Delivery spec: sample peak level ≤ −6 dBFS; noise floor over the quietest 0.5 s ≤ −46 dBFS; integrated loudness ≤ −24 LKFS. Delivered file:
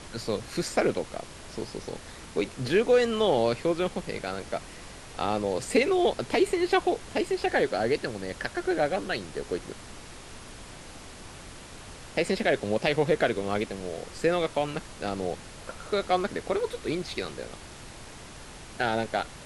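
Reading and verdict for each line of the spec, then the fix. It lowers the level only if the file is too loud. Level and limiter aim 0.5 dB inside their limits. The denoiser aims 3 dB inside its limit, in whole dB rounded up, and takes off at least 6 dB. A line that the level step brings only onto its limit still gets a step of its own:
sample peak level −10.0 dBFS: in spec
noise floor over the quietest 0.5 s −44 dBFS: out of spec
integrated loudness −28.0 LKFS: in spec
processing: broadband denoise 6 dB, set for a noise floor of −44 dBFS

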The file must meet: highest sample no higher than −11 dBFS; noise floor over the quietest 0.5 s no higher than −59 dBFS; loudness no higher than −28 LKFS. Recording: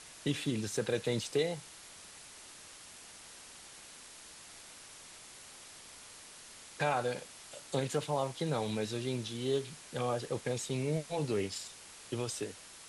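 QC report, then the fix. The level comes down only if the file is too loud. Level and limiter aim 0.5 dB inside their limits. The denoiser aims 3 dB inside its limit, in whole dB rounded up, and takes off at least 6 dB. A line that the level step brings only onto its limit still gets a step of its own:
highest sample −19.5 dBFS: in spec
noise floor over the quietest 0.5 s −52 dBFS: out of spec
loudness −35.5 LKFS: in spec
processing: broadband denoise 10 dB, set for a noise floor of −52 dBFS

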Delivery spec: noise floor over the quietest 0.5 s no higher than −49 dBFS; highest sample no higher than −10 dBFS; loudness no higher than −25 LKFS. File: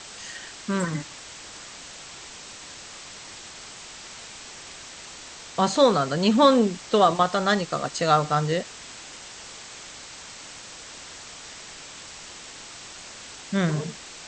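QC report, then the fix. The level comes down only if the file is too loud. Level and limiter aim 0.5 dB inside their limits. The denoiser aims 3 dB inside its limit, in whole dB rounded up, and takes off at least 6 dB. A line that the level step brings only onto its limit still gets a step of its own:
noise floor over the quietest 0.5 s −42 dBFS: out of spec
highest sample −6.0 dBFS: out of spec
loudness −23.0 LKFS: out of spec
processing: broadband denoise 8 dB, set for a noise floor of −42 dBFS
level −2.5 dB
brickwall limiter −10.5 dBFS

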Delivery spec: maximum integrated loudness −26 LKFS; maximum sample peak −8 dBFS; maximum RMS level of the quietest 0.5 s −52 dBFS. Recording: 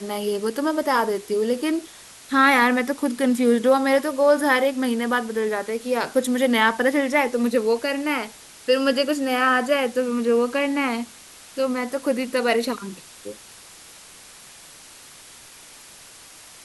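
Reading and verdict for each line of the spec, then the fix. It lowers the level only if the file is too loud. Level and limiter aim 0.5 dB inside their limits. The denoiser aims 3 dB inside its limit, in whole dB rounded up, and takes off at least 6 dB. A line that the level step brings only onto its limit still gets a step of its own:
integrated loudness −21.5 LKFS: out of spec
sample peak −5.0 dBFS: out of spec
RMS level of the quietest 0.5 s −45 dBFS: out of spec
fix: broadband denoise 6 dB, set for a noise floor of −45 dBFS
level −5 dB

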